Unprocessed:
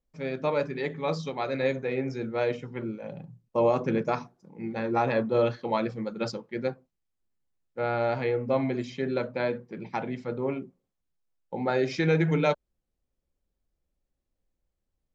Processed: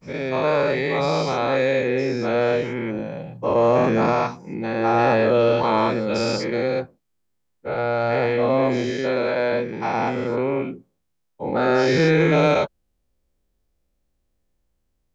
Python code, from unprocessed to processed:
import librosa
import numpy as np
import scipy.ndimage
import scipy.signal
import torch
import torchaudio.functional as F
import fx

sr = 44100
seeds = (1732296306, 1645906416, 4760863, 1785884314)

p1 = fx.spec_dilate(x, sr, span_ms=240)
p2 = fx.low_shelf(p1, sr, hz=210.0, db=-7.0, at=(8.9, 9.52))
p3 = 10.0 ** (-20.5 / 20.0) * np.tanh(p2 / 10.0 ** (-20.5 / 20.0))
y = p2 + (p3 * librosa.db_to_amplitude(-8.5))